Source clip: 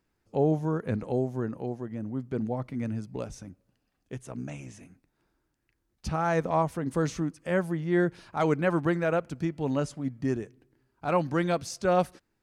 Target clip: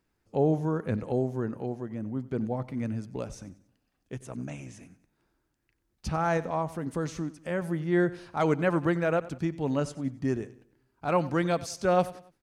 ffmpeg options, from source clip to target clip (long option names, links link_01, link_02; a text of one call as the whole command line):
ffmpeg -i in.wav -filter_complex "[0:a]asettb=1/sr,asplit=3[link_01][link_02][link_03];[link_01]atrim=end=6.374[link_04];[link_02]atrim=start=6.37:end=7.62,asetpts=PTS-STARTPTS,afade=type=in:duration=0.004:curve=qsin,afade=type=out:start_time=1.246:duration=0.004:curve=qsin,acompressor=threshold=-34dB:ratio=1.5[link_05];[link_03]atrim=start=7.616[link_06];[link_04][link_05]acrossfade=duration=0.004:curve1=hsin:curve2=qsin[link_07];[link_07][link_06]acrossfade=duration=0.004:curve1=qsin:curve2=hsin,asplit=2[link_08][link_09];[link_09]aecho=0:1:93|186|279:0.126|0.0504|0.0201[link_10];[link_08][link_10]amix=inputs=2:normalize=0" out.wav